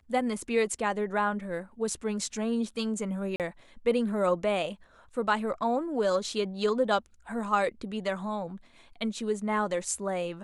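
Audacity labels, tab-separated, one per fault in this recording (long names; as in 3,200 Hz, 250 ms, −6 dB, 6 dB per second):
3.360000	3.400000	drop-out 38 ms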